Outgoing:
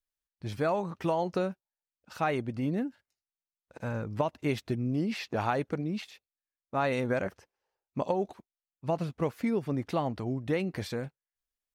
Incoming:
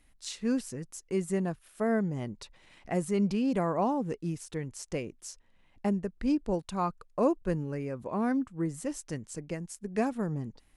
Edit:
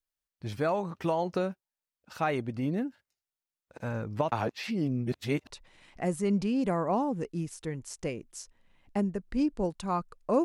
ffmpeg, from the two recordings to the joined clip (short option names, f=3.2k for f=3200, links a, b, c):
-filter_complex "[0:a]apad=whole_dur=10.44,atrim=end=10.44,asplit=2[a][b];[a]atrim=end=4.322[c];[b]atrim=start=4.318:end=5.502,asetpts=PTS-STARTPTS,areverse[d];[1:a]atrim=start=2.388:end=7.33[e];[c][d]acrossfade=d=0.004:c1=hsin:c2=hsin[f];[f][e]acrossfade=d=0.004:c1=hsin:c2=hsin"